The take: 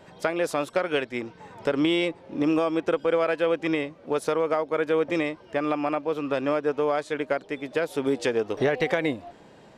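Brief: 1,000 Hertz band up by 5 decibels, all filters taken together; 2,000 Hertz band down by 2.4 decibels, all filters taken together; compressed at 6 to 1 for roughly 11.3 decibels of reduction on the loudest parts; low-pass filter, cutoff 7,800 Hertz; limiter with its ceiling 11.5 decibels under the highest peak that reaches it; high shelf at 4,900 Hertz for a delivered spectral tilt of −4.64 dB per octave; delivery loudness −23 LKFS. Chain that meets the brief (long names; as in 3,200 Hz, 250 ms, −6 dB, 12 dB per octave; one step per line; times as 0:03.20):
low-pass filter 7,800 Hz
parametric band 1,000 Hz +8.5 dB
parametric band 2,000 Hz −5.5 dB
high-shelf EQ 4,900 Hz −5 dB
downward compressor 6 to 1, threshold −30 dBFS
level +14 dB
brickwall limiter −12 dBFS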